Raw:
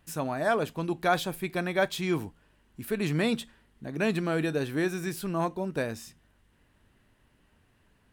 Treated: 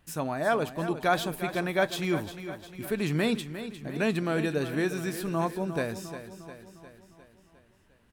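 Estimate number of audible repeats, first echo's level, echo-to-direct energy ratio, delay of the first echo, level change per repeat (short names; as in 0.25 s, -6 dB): 5, -11.5 dB, -10.0 dB, 0.354 s, -5.0 dB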